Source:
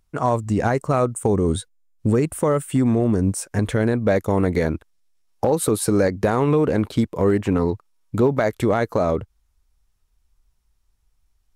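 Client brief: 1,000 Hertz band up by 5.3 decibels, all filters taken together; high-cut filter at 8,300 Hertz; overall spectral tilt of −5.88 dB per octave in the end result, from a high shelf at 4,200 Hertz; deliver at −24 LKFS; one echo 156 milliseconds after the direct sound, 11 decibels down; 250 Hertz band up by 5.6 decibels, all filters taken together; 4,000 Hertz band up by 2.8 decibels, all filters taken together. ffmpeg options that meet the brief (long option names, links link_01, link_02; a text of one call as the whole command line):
ffmpeg -i in.wav -af "lowpass=8300,equalizer=frequency=250:width_type=o:gain=6.5,equalizer=frequency=1000:width_type=o:gain=6.5,equalizer=frequency=4000:width_type=o:gain=5,highshelf=frequency=4200:gain=-3.5,aecho=1:1:156:0.282,volume=-7dB" out.wav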